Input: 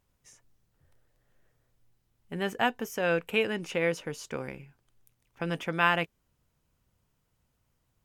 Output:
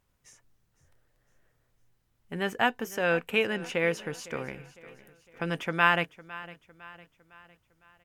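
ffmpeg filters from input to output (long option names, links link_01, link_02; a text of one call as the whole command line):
ffmpeg -i in.wav -af "equalizer=frequency=1600:width_type=o:width=1.5:gain=3,aecho=1:1:506|1012|1518|2024:0.119|0.0559|0.0263|0.0123" out.wav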